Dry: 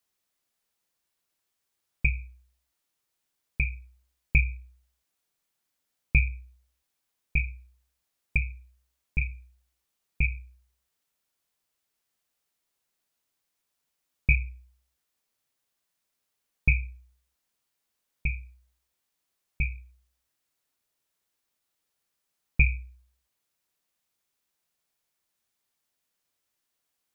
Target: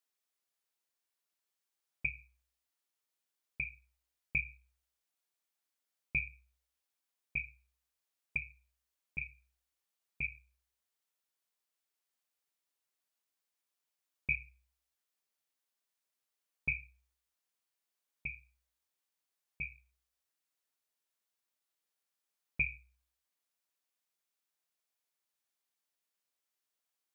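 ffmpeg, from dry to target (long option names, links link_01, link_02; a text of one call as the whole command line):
ffmpeg -i in.wav -af "highpass=frequency=360:poles=1,volume=-7.5dB" out.wav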